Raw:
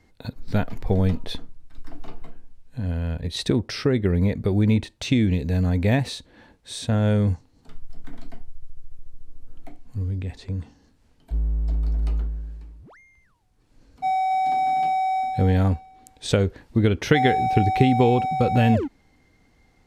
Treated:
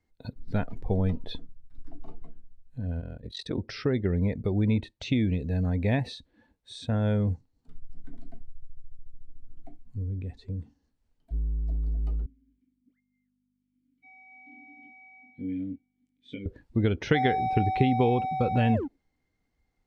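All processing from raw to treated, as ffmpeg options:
-filter_complex "[0:a]asettb=1/sr,asplit=3[s0][s1][s2];[s0]atrim=end=3.004[s3];[s1]atrim=start=3:end=3.58,asetpts=PTS-STARTPTS,afade=t=in:d=0.004:c=qsin,afade=t=out:st=0.576:d=0.004:c=qsin,aeval=exprs='val(0)*sin(2*PI*22*n/s)':c=same,bass=f=250:g=-5,treble=f=4000:g=1[s4];[s2]atrim=start=3.576[s5];[s3][s4]acrossfade=d=0.004:c1=hsin:c2=qsin[s6];[s6][s5]acrossfade=d=0.004:c1=qsin:c2=hsin,asettb=1/sr,asplit=3[s7][s8][s9];[s7]atrim=end=12.264[s10];[s8]atrim=start=12.26:end=16.46,asetpts=PTS-STARTPTS,afade=t=in:d=0.004:c=qsin,afade=t=out:st=4.196:d=0.004:c=qsin,aeval=exprs='val(0)+0.00708*(sin(2*PI*50*n/s)+sin(2*PI*2*50*n/s)/2+sin(2*PI*3*50*n/s)/3+sin(2*PI*4*50*n/s)/4+sin(2*PI*5*50*n/s)/5)':c=same,asplit=3[s11][s12][s13];[s11]bandpass=f=270:t=q:w=8,volume=1[s14];[s12]bandpass=f=2290:t=q:w=8,volume=0.501[s15];[s13]bandpass=f=3010:t=q:w=8,volume=0.355[s16];[s14][s15][s16]amix=inputs=3:normalize=0,asplit=2[s17][s18];[s18]adelay=21,volume=0.668[s19];[s17][s19]amix=inputs=2:normalize=0,atrim=end_sample=185220[s20];[s9]atrim=start=16.456[s21];[s10][s20]acrossfade=d=0.004:c1=hsin:c2=qsin[s22];[s22][s21]acrossfade=d=0.004:c1=qsin:c2=hsin,afftdn=nr=13:nf=-40,acrossover=split=5000[s23][s24];[s24]acompressor=threshold=0.00398:ratio=4:attack=1:release=60[s25];[s23][s25]amix=inputs=2:normalize=0,volume=0.531"

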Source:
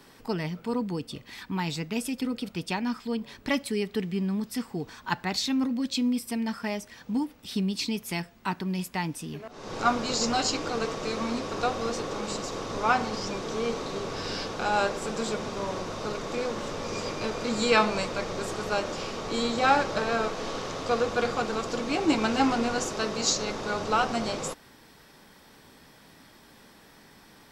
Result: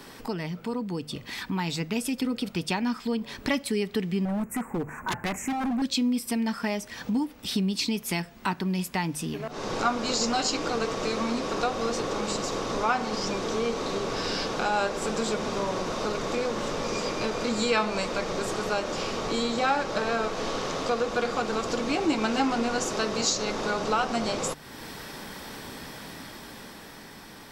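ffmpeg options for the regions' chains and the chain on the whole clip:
-filter_complex "[0:a]asettb=1/sr,asplit=3[s0][s1][s2];[s0]atrim=end=4.254[s3];[s1]atrim=start=4.25:end=5.82,asetpts=PTS-STARTPTS,afade=t=in:d=0.004:c=qsin,afade=t=out:st=1.566:d=0.004:c=qsin,asuperstop=centerf=4100:order=8:qfactor=0.88,highshelf=f=6000:g=-4.5,aeval=exprs='0.0422*(abs(mod(val(0)/0.0422+3,4)-2)-1)':c=same[s4];[s2]atrim=start=5.816[s5];[s3][s4]acrossfade=d=0.004:c1=hsin:c2=qsin[s6];[s6][s5]acrossfade=d=0.004:c1=qsin:c2=hsin,dynaudnorm=f=300:g=11:m=2.37,bandreject=f=50:t=h:w=6,bandreject=f=100:t=h:w=6,bandreject=f=150:t=h:w=6,acompressor=threshold=0.00631:ratio=2,volume=2.51"

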